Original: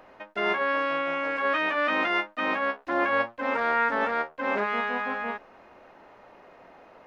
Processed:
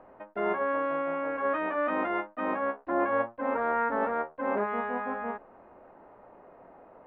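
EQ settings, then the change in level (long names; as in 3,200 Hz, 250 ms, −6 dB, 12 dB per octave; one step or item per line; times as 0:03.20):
low-pass filter 1,100 Hz 12 dB per octave
0.0 dB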